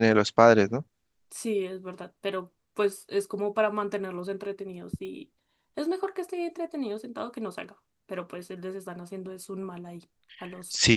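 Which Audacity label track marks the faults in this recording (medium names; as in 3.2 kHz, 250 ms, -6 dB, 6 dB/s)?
5.050000	5.050000	pop -29 dBFS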